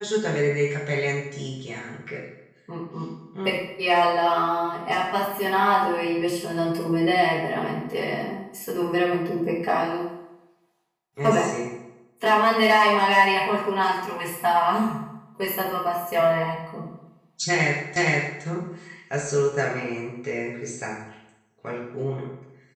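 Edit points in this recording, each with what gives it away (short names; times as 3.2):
17.96 repeat of the last 0.47 s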